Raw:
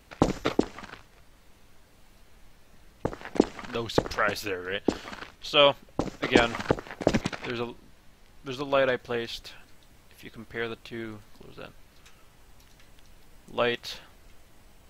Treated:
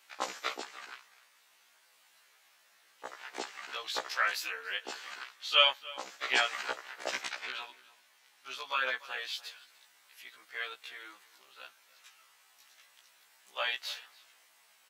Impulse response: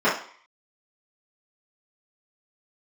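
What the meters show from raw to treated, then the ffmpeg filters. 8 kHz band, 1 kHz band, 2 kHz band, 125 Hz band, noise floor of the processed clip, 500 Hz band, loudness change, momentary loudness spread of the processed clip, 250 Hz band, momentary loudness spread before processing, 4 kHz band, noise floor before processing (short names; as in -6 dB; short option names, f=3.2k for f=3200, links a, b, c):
-1.0 dB, -5.5 dB, -1.5 dB, under -35 dB, -66 dBFS, -15.0 dB, -5.0 dB, 22 LU, -26.0 dB, 22 LU, -0.5 dB, -57 dBFS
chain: -filter_complex "[0:a]highpass=1.2k,asplit=2[a][b];[b]adelay=291.5,volume=-19dB,highshelf=f=4k:g=-6.56[c];[a][c]amix=inputs=2:normalize=0,afftfilt=real='re*1.73*eq(mod(b,3),0)':imag='im*1.73*eq(mod(b,3),0)':win_size=2048:overlap=0.75,volume=1.5dB"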